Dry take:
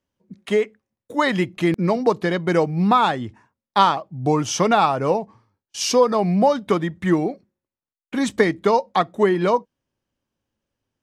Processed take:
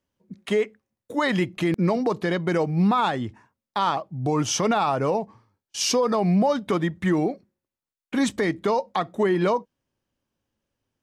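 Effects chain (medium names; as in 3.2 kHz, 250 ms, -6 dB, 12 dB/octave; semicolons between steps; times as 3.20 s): peak limiter -13.5 dBFS, peak gain reduction 10.5 dB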